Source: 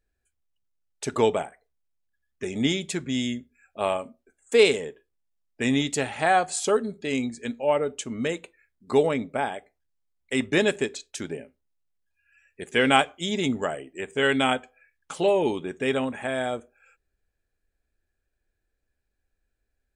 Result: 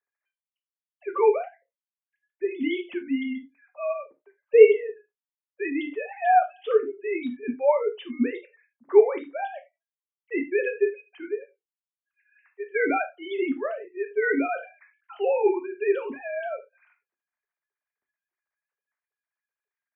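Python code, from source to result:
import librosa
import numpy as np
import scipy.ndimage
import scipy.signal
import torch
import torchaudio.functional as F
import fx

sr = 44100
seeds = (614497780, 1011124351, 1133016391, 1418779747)

y = fx.sine_speech(x, sr)
y = fx.rev_gated(y, sr, seeds[0], gate_ms=110, shape='falling', drr_db=4.5)
y = fx.sustainer(y, sr, db_per_s=140.0, at=(14.25, 15.48), fade=0.02)
y = y * 10.0 ** (-1.0 / 20.0)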